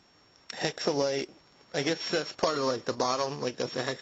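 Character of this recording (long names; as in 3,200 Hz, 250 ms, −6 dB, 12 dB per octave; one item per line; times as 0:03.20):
a buzz of ramps at a fixed pitch in blocks of 8 samples
AAC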